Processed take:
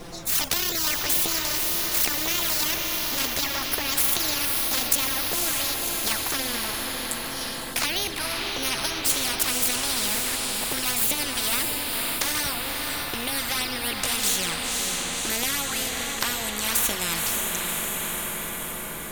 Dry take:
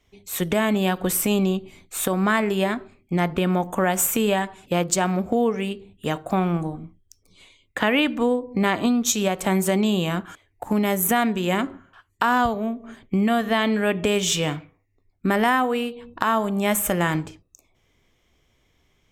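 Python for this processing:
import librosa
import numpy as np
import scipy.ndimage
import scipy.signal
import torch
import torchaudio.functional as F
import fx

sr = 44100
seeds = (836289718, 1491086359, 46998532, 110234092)

p1 = fx.pitch_glide(x, sr, semitones=9.0, runs='ending unshifted')
p2 = fx.high_shelf(p1, sr, hz=3400.0, db=5.0)
p3 = fx.rider(p2, sr, range_db=4, speed_s=2.0)
p4 = p2 + F.gain(torch.from_numpy(p3), -1.0).numpy()
p5 = fx.phaser_stages(p4, sr, stages=2, low_hz=370.0, high_hz=1300.0, hz=1.9, feedback_pct=15)
p6 = fx.dmg_noise_colour(p5, sr, seeds[0], colour='brown', level_db=-40.0)
p7 = fx.env_flanger(p6, sr, rest_ms=7.4, full_db=-13.5)
p8 = p7 + fx.echo_diffused(p7, sr, ms=539, feedback_pct=56, wet_db=-12.0, dry=0)
y = fx.spectral_comp(p8, sr, ratio=4.0)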